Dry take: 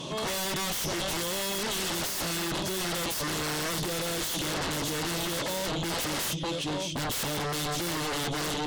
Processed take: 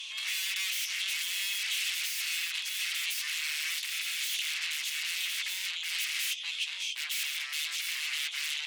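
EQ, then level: ladder high-pass 2100 Hz, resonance 60%; +7.5 dB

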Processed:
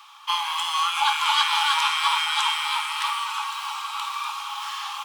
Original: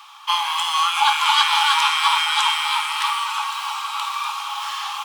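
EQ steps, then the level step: HPF 720 Hz 24 dB/oct; -4.0 dB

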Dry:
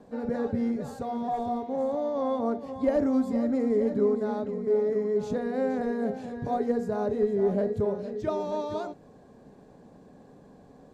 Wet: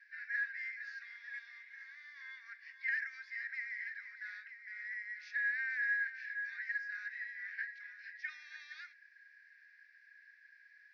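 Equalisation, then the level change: rippled Chebyshev high-pass 1600 Hz, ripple 3 dB; elliptic low-pass 5300 Hz, stop band 40 dB; resonant high shelf 2500 Hz -8.5 dB, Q 3; +9.5 dB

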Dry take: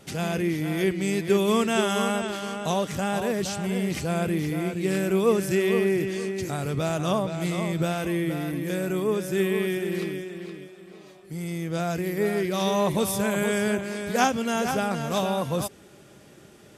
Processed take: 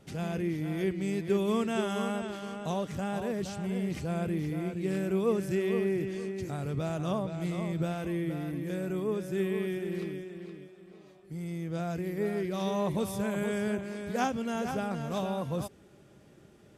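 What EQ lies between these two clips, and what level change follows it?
tilt -1.5 dB/oct; -8.5 dB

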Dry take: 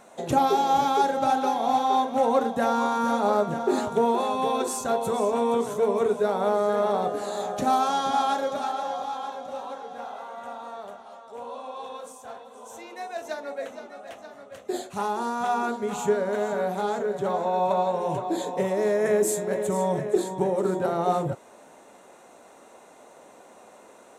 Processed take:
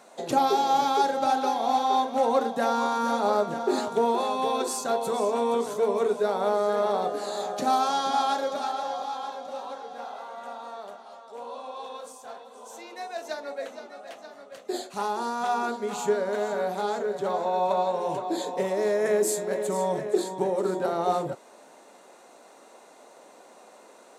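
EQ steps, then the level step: HPF 220 Hz 12 dB/oct; bell 4600 Hz +7.5 dB 0.44 oct; -1.0 dB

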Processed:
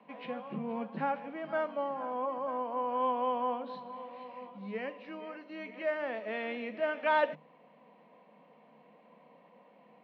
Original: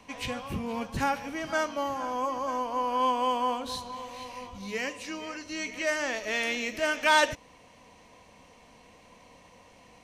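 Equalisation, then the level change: rippled Chebyshev high-pass 150 Hz, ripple 6 dB; LPF 4900 Hz 24 dB/oct; air absorption 450 m; 0.0 dB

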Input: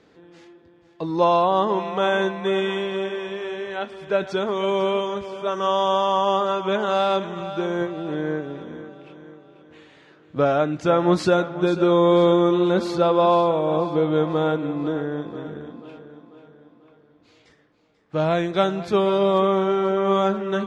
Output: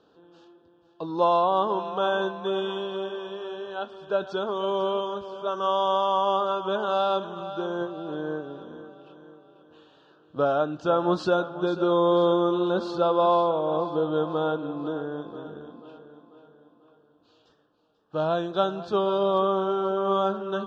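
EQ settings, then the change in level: Butterworth band-stop 2100 Hz, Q 1.5; LPF 4000 Hz 12 dB/oct; low shelf 320 Hz -9 dB; -1.5 dB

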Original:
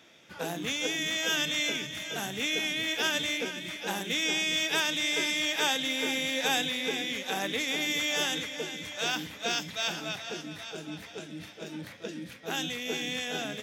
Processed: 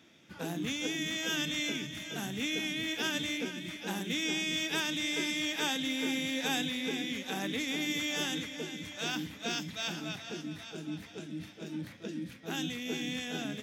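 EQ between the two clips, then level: resonant low shelf 380 Hz +6 dB, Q 1.5; -5.0 dB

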